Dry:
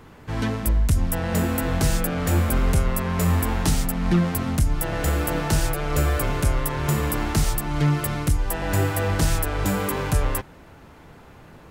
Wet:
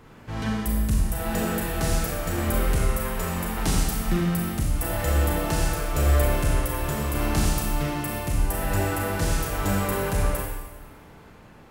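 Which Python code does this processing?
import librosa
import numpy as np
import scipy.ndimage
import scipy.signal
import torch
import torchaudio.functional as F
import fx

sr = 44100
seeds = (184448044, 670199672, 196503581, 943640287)

y = fx.tremolo_shape(x, sr, shape='saw_down', hz=0.84, depth_pct=35)
y = fx.rev_schroeder(y, sr, rt60_s=1.2, comb_ms=29, drr_db=-2.0)
y = y * 10.0 ** (-4.0 / 20.0)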